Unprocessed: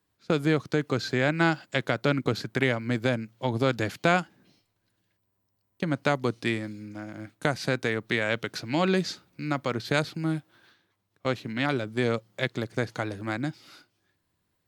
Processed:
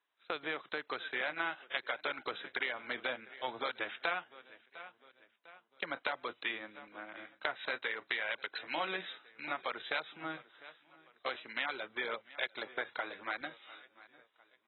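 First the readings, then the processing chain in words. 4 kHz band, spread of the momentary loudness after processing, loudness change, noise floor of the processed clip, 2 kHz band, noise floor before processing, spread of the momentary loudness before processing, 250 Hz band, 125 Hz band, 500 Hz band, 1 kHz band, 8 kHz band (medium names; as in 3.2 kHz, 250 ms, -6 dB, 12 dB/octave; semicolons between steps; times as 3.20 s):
-6.0 dB, 15 LU, -10.5 dB, -74 dBFS, -6.0 dB, -77 dBFS, 8 LU, -22.0 dB, -33.5 dB, -14.0 dB, -8.0 dB, under -35 dB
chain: high-pass 810 Hz 12 dB/octave; on a send: feedback delay 701 ms, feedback 44%, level -23.5 dB; on the sum: compression 4:1, threshold -32 dBFS, peak gain reduction 10.5 dB; trim -1.5 dB; AAC 16 kbps 24 kHz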